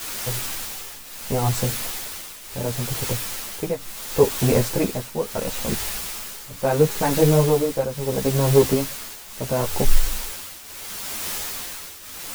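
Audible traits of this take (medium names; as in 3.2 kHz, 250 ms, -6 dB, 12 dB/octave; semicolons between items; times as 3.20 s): a quantiser's noise floor 6-bit, dither triangular; tremolo triangle 0.73 Hz, depth 80%; a shimmering, thickened sound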